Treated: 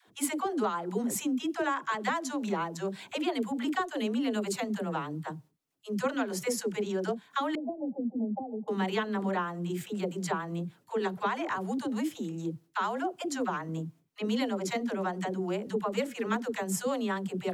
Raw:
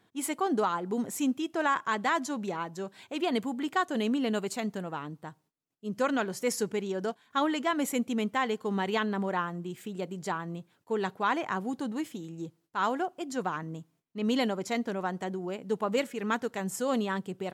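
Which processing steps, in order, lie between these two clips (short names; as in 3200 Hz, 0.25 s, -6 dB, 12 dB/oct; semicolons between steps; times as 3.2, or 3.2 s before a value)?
compressor 4:1, threshold -33 dBFS, peak gain reduction 9.5 dB; dispersion lows, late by 85 ms, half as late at 400 Hz; 7.55–8.68 rippled Chebyshev low-pass 850 Hz, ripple 6 dB; gain +5 dB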